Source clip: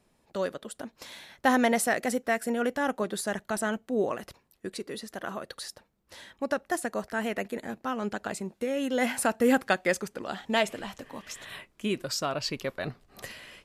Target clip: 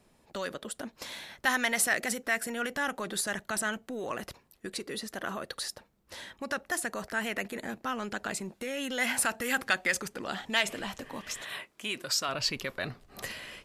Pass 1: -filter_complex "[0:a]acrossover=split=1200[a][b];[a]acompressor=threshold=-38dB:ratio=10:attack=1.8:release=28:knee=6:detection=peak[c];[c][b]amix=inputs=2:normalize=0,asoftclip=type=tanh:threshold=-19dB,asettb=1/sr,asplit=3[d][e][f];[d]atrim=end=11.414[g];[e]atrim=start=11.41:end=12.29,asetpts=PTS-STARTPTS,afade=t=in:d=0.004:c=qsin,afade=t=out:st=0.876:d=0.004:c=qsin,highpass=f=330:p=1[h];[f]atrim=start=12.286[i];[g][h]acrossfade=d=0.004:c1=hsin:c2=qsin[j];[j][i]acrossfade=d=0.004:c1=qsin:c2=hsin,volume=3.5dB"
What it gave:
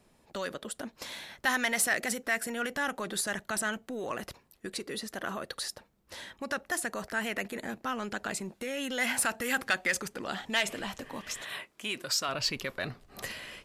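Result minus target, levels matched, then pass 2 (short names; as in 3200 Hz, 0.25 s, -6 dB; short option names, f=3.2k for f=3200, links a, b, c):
soft clip: distortion +9 dB
-filter_complex "[0:a]acrossover=split=1200[a][b];[a]acompressor=threshold=-38dB:ratio=10:attack=1.8:release=28:knee=6:detection=peak[c];[c][b]amix=inputs=2:normalize=0,asoftclip=type=tanh:threshold=-13dB,asettb=1/sr,asplit=3[d][e][f];[d]atrim=end=11.414[g];[e]atrim=start=11.41:end=12.29,asetpts=PTS-STARTPTS,afade=t=in:d=0.004:c=qsin,afade=t=out:st=0.876:d=0.004:c=qsin,highpass=f=330:p=1[h];[f]atrim=start=12.286[i];[g][h]acrossfade=d=0.004:c1=hsin:c2=qsin[j];[j][i]acrossfade=d=0.004:c1=qsin:c2=hsin,volume=3.5dB"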